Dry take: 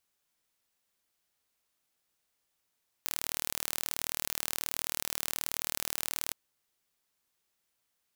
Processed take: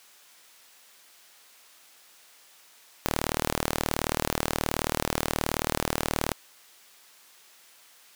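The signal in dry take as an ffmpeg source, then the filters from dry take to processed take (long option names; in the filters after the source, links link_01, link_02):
-f lavfi -i "aevalsrc='0.531*eq(mod(n,1140),0)':duration=3.27:sample_rate=44100"
-filter_complex "[0:a]asplit=2[link_01][link_02];[link_02]highpass=frequency=720:poles=1,volume=33dB,asoftclip=type=tanh:threshold=-5dB[link_03];[link_01][link_03]amix=inputs=2:normalize=0,lowpass=frequency=7600:poles=1,volume=-6dB"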